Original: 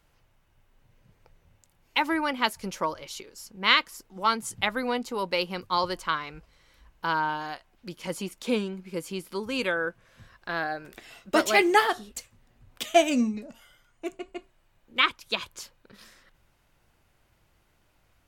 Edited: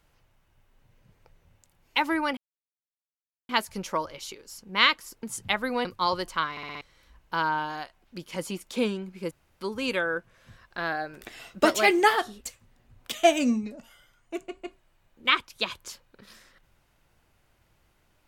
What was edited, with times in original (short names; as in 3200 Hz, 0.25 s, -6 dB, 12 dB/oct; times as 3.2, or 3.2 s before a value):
2.37 insert silence 1.12 s
4.11–4.36 cut
4.98–5.56 cut
6.22 stutter in place 0.06 s, 5 plays
9.02–9.32 room tone
10.92–11.36 gain +3.5 dB